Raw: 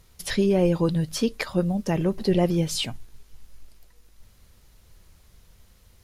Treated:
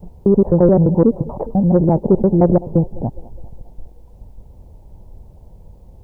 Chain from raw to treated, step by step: slices in reverse order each 86 ms, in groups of 3; in parallel at 0 dB: compressor 8:1, threshold -30 dBFS, peak gain reduction 14 dB; on the sum: Chebyshev low-pass 900 Hz, order 5; thinning echo 0.206 s, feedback 60%, high-pass 300 Hz, level -18.5 dB; added harmonics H 5 -8 dB, 7 -32 dB, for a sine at 0 dBFS; requantised 12-bit, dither triangular

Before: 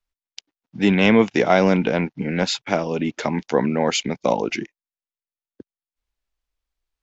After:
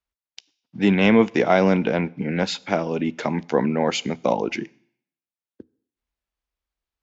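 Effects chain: HPF 44 Hz; high shelf 4800 Hz -7 dB; on a send: reverb RT60 0.60 s, pre-delay 3 ms, DRR 21 dB; on the sum: gain -1 dB

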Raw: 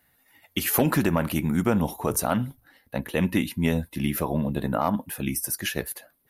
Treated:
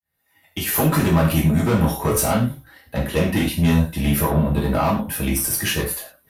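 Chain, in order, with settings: opening faded in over 1.17 s; tube stage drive 22 dB, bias 0.3; non-linear reverb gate 0.14 s falling, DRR -4 dB; gain +4 dB

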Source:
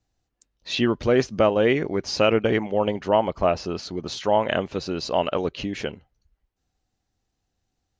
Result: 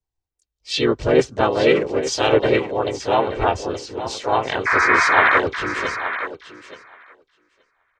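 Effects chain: comb 2.6 ms, depth 68%; painted sound noise, 4.66–5.4, 930–1900 Hz -17 dBFS; harmoniser -7 st -12 dB, +3 st -2 dB, +5 st -6 dB; on a send: thinning echo 0.875 s, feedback 18%, high-pass 230 Hz, level -7.5 dB; on the sum: three-band expander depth 40%; gain -2 dB

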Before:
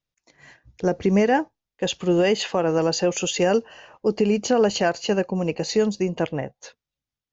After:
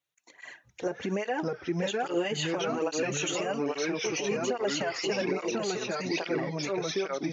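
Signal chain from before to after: HPF 650 Hz 6 dB/oct; in parallel at +1 dB: compressor, threshold -36 dBFS, peak gain reduction 17.5 dB; on the sum: bell 5000 Hz -13 dB 0.23 oct; echoes that change speed 0.496 s, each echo -2 st, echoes 3; limiter -18.5 dBFS, peak gain reduction 10.5 dB; tape flanging out of phase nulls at 1.2 Hz, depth 5 ms

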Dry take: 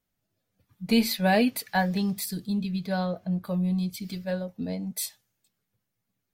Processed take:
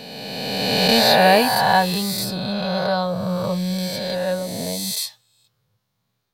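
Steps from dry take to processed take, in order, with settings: spectral swells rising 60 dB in 2.34 s; ten-band EQ 125 Hz +9 dB, 250 Hz -4 dB, 500 Hz +5 dB, 1000 Hz +10 dB, 4000 Hz +10 dB; gain -1 dB

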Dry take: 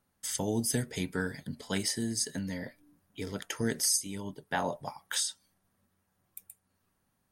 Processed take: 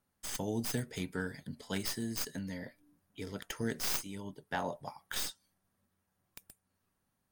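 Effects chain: tracing distortion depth 0.14 ms; gain -4.5 dB

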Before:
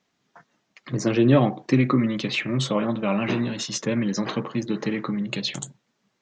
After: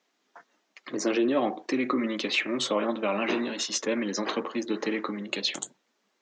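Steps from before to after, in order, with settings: limiter -14 dBFS, peak gain reduction 9 dB; HPF 270 Hz 24 dB/oct

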